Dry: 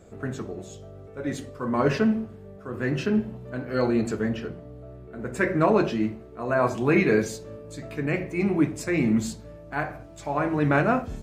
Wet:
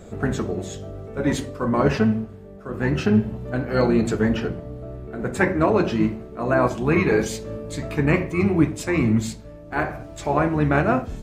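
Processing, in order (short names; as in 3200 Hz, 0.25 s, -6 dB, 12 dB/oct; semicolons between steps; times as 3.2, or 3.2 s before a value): harmoniser -12 st -7 dB; vocal rider within 4 dB 0.5 s; gain +4 dB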